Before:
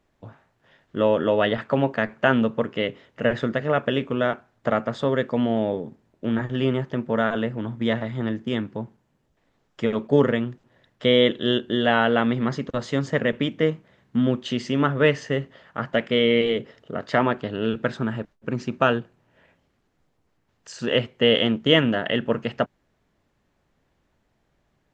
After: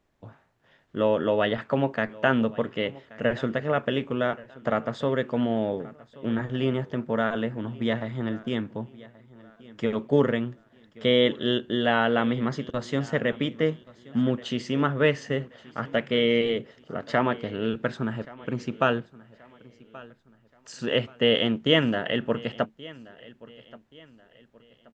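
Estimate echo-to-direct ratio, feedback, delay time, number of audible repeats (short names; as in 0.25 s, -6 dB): -20.5 dB, 37%, 1.128 s, 2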